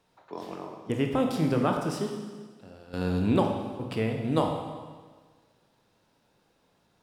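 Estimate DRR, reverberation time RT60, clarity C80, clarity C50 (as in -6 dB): 2.5 dB, 1.5 s, 6.0 dB, 4.5 dB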